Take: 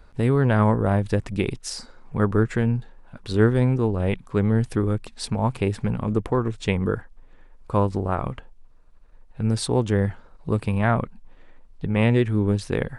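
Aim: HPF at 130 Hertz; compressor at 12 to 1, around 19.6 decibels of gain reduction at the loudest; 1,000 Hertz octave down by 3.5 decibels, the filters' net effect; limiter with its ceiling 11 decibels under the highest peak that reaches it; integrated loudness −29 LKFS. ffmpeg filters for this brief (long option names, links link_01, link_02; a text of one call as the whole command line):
ffmpeg -i in.wav -af "highpass=130,equalizer=frequency=1000:width_type=o:gain=-4.5,acompressor=threshold=-35dB:ratio=12,volume=14.5dB,alimiter=limit=-17.5dB:level=0:latency=1" out.wav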